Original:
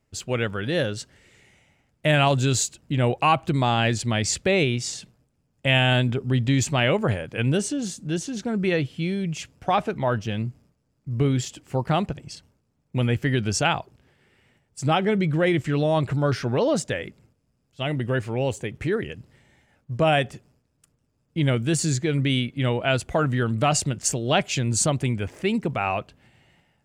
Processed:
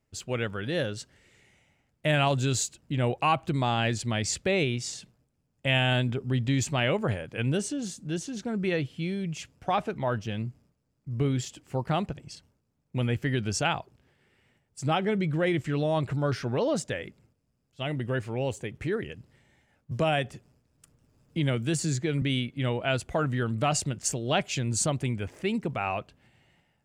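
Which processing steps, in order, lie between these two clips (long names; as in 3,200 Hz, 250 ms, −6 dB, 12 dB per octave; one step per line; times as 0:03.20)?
0:19.91–0:22.22: multiband upward and downward compressor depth 40%
level −5 dB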